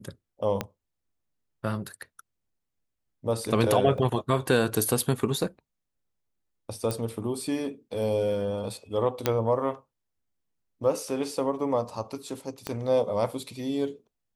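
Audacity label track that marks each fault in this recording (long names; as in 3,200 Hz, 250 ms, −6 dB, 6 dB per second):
0.610000	0.610000	click −13 dBFS
3.980000	3.980000	drop-out 2.2 ms
6.910000	6.910000	click
9.260000	9.260000	click −8 dBFS
12.670000	12.670000	click −16 dBFS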